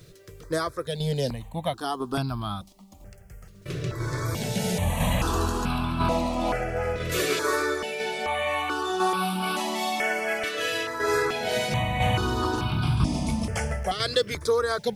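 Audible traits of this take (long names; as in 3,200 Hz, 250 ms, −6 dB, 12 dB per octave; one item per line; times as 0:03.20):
tremolo saw down 1 Hz, depth 45%
a quantiser's noise floor 12 bits, dither none
notches that jump at a steady rate 2.3 Hz 230–1,900 Hz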